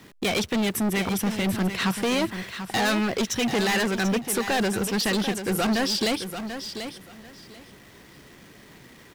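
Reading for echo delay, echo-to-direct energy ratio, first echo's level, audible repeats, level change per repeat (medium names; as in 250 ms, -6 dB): 739 ms, -9.5 dB, -9.5 dB, 2, -14.5 dB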